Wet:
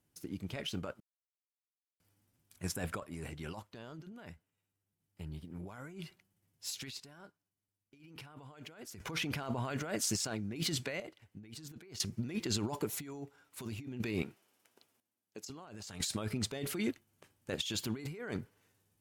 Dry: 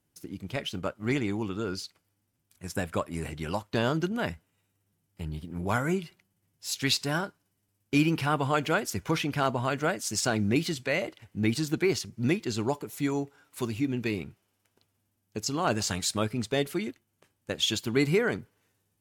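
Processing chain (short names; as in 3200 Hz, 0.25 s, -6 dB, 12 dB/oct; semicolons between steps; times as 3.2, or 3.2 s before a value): 14.22–15.5 HPF 260 Hz 12 dB/oct; negative-ratio compressor -34 dBFS, ratio -1; random-step tremolo 1 Hz, depth 100%; gain -2 dB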